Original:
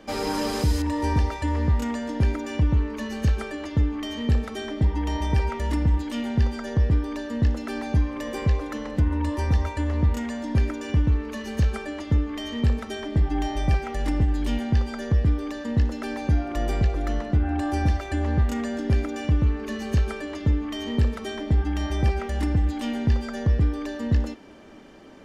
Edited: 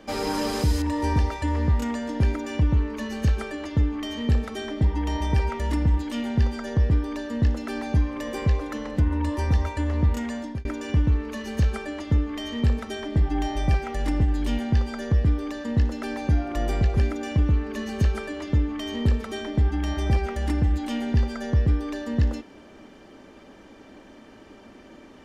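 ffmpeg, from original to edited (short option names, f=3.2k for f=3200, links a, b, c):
-filter_complex "[0:a]asplit=3[a][b][c];[a]atrim=end=10.65,asetpts=PTS-STARTPTS,afade=t=out:st=10.38:d=0.27[d];[b]atrim=start=10.65:end=16.972,asetpts=PTS-STARTPTS,afade=t=in:d=0.004:c=hsin[e];[c]atrim=start=18.898[f];[d][e]concat=n=2:v=0:a=1[g];[g][f]acrossfade=d=0.004:c1=hsin:c2=hsin"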